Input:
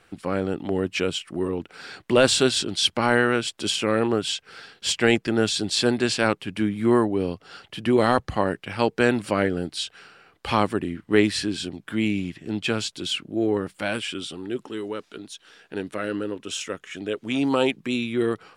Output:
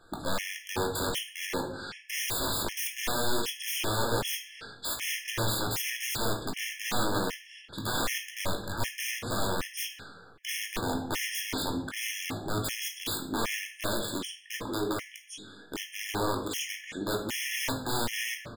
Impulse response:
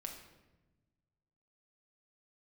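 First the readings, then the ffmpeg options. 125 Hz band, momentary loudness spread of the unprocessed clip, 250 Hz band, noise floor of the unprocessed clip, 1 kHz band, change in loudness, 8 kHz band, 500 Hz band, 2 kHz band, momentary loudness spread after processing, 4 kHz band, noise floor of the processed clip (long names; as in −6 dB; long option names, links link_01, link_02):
−6.5 dB, 12 LU, −12.5 dB, −63 dBFS, −6.0 dB, −8.0 dB, −1.5 dB, −12.0 dB, −6.0 dB, 8 LU, −6.5 dB, −52 dBFS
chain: -filter_complex "[0:a]asplit=2[link_01][link_02];[link_02]alimiter=limit=-15.5dB:level=0:latency=1:release=474,volume=-2dB[link_03];[link_01][link_03]amix=inputs=2:normalize=0,aeval=exprs='(mod(8.91*val(0)+1,2)-1)/8.91':channel_layout=same,asplit=2[link_04][link_05];[link_05]adelay=19,volume=-10.5dB[link_06];[link_04][link_06]amix=inputs=2:normalize=0[link_07];[1:a]atrim=start_sample=2205,asetrate=70560,aresample=44100[link_08];[link_07][link_08]afir=irnorm=-1:irlink=0,afftfilt=real='re*gt(sin(2*PI*1.3*pts/sr)*(1-2*mod(floor(b*sr/1024/1700),2)),0)':imag='im*gt(sin(2*PI*1.3*pts/sr)*(1-2*mod(floor(b*sr/1024/1700),2)),0)':win_size=1024:overlap=0.75,volume=2.5dB"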